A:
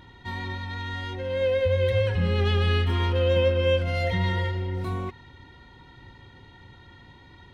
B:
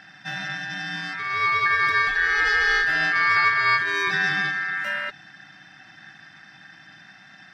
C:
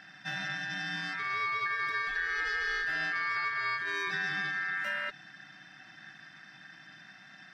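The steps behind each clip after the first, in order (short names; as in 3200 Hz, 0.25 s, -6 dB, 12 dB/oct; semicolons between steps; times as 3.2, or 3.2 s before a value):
ring modulator 1700 Hz; gain +4.5 dB
bell 85 Hz -14 dB 0.4 oct; notch 820 Hz, Q 12; compressor 5:1, threshold -25 dBFS, peak gain reduction 9.5 dB; gain -4.5 dB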